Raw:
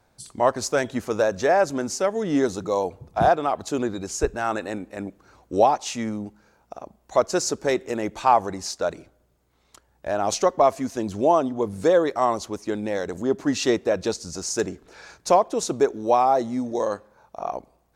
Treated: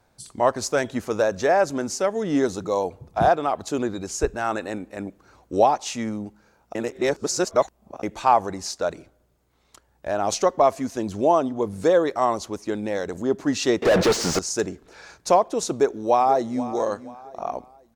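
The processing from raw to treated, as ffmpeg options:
ffmpeg -i in.wav -filter_complex "[0:a]asettb=1/sr,asplit=3[link_01][link_02][link_03];[link_01]atrim=end=13.824[link_04];[link_02]atrim=start=13.82:end=14.39,asetpts=PTS-STARTPTS,afade=type=in:duration=0.004:curve=qsin,afade=type=out:start_time=0.566:duration=0.004:curve=qsin,asplit=2[link_05][link_06];[link_06]highpass=frequency=720:poles=1,volume=39dB,asoftclip=type=tanh:threshold=-10dB[link_07];[link_05][link_07]amix=inputs=2:normalize=0,lowpass=frequency=1800:poles=1,volume=-6dB[link_08];[link_03]atrim=start=14.386[link_09];[link_04][link_08]acrossfade=duration=0.004:curve1=hsin:curve2=qsin[link_10];[link_10][link_09]acrossfade=duration=0.004:curve1=qsin:curve2=hsin,asplit=2[link_11][link_12];[link_12]afade=type=in:start_time=15.72:duration=0.01,afade=type=out:start_time=16.66:duration=0.01,aecho=0:1:480|960|1440:0.177828|0.0622398|0.0217839[link_13];[link_11][link_13]amix=inputs=2:normalize=0,asplit=3[link_14][link_15][link_16];[link_14]atrim=end=6.752[link_17];[link_15]atrim=start=6.748:end=8.032,asetpts=PTS-STARTPTS,areverse[link_18];[link_16]atrim=start=8.028[link_19];[link_17][link_18]acrossfade=duration=0.004:curve1=hsin:curve2=hsin[link_20];[link_20][link_19]acrossfade=duration=0.004:curve1=hsin:curve2=hsin" out.wav

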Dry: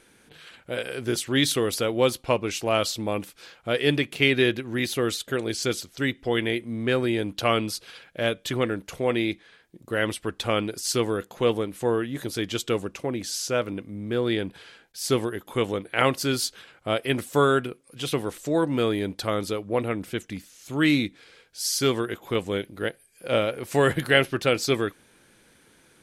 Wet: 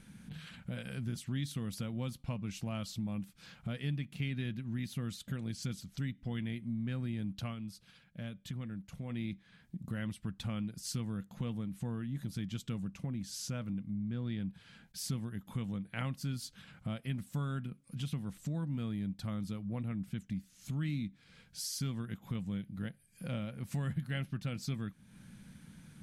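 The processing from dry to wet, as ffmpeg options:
ffmpeg -i in.wav -filter_complex "[0:a]asettb=1/sr,asplit=3[link_01][link_02][link_03];[link_01]atrim=end=13.964[link_04];[link_02]atrim=start=13.96:end=14.41,asetpts=PTS-STARTPTS,afade=type=in:duration=0.004:curve=qsin,afade=type=out:start_time=0.446:duration=0.004:curve=qsin,lowpass=6900[link_05];[link_03]atrim=start=14.406[link_06];[link_04][link_05]acrossfade=duration=0.004:curve1=hsin:curve2=qsin[link_07];[link_07][link_06]acrossfade=duration=0.004:curve1=qsin:curve2=hsin,asplit=3[link_08][link_09][link_10];[link_08]atrim=end=7.56,asetpts=PTS-STARTPTS,afade=type=out:start_time=7.4:duration=0.16:silence=0.251189[link_11];[link_09]atrim=start=7.56:end=9.09,asetpts=PTS-STARTPTS,volume=-12dB[link_12];[link_10]atrim=start=9.09,asetpts=PTS-STARTPTS,afade=type=in:duration=0.16:silence=0.251189[link_13];[link_11][link_12][link_13]concat=n=3:v=0:a=1,lowshelf=frequency=270:width_type=q:width=3:gain=12.5,acompressor=threshold=-35dB:ratio=3,volume=-5dB" out.wav

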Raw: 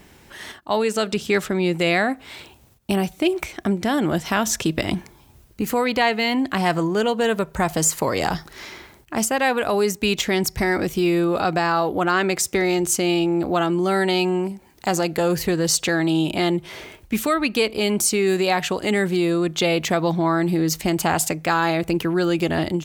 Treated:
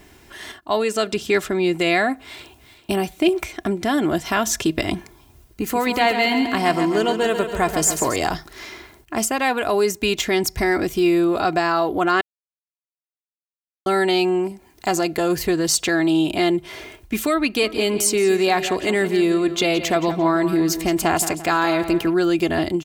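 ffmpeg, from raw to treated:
ffmpeg -i in.wav -filter_complex "[0:a]asplit=2[link_01][link_02];[link_02]afade=type=in:start_time=2.19:duration=0.01,afade=type=out:start_time=2.91:duration=0.01,aecho=0:1:380|760|1140|1520|1900:0.266073|0.119733|0.0538797|0.0242459|0.0109106[link_03];[link_01][link_03]amix=inputs=2:normalize=0,asettb=1/sr,asplit=3[link_04][link_05][link_06];[link_04]atrim=end=5.614[link_07];[link_05]atrim=start=5.61:end=8.16,asetpts=PTS-STARTPTS,afade=type=in:duration=0.004:curve=qsin,afade=type=out:start_time=2.546:duration=0.004:curve=qsin,aecho=1:1:138|276|414|552|690|828|966:0.398|0.231|0.134|0.0777|0.0451|0.0261|0.0152,atrim=end_sample=112455[link_08];[link_06]atrim=start=8.156[link_09];[link_07][link_08]acrossfade=duration=0.004:curve1=hsin:curve2=qsin[link_10];[link_10][link_09]acrossfade=duration=0.004:curve1=qsin:curve2=hsin,asplit=3[link_11][link_12][link_13];[link_11]afade=type=out:start_time=17.62:duration=0.02[link_14];[link_12]asplit=2[link_15][link_16];[link_16]adelay=172,lowpass=frequency=4400:poles=1,volume=-11dB,asplit=2[link_17][link_18];[link_18]adelay=172,lowpass=frequency=4400:poles=1,volume=0.41,asplit=2[link_19][link_20];[link_20]adelay=172,lowpass=frequency=4400:poles=1,volume=0.41,asplit=2[link_21][link_22];[link_22]adelay=172,lowpass=frequency=4400:poles=1,volume=0.41[link_23];[link_15][link_17][link_19][link_21][link_23]amix=inputs=5:normalize=0,afade=type=in:start_time=17.62:duration=0.02,afade=type=out:start_time=22.09:duration=0.02[link_24];[link_13]afade=type=in:start_time=22.09:duration=0.02[link_25];[link_14][link_24][link_25]amix=inputs=3:normalize=0,asplit=3[link_26][link_27][link_28];[link_26]atrim=end=12.21,asetpts=PTS-STARTPTS,afade=type=out:start_time=12.206:duration=0.004:curve=hsin[link_29];[link_27]atrim=start=12.21:end=13.86,asetpts=PTS-STARTPTS,volume=0[link_30];[link_28]atrim=start=13.86,asetpts=PTS-STARTPTS,afade=type=in:duration=0.004:curve=hsin[link_31];[link_29][link_30][link_31]concat=n=3:v=0:a=1,aecho=1:1:2.9:0.41" out.wav

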